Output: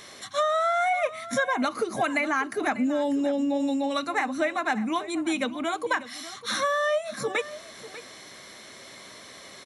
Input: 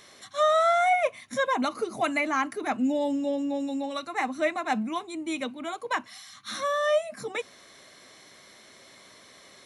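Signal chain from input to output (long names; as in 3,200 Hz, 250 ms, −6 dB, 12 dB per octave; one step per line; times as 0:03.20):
dynamic equaliser 1,600 Hz, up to +6 dB, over −44 dBFS, Q 3.7
downward compressor 6 to 1, threshold −29 dBFS, peak gain reduction 11 dB
single-tap delay 594 ms −15.5 dB
level +6.5 dB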